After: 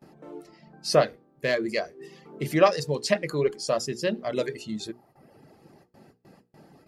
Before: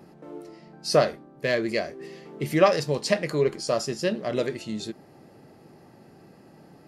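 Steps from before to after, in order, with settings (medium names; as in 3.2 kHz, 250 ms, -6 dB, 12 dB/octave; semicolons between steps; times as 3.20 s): gate with hold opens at -42 dBFS; reverb removal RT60 0.86 s; hum notches 60/120/180/240/300/360/420/480 Hz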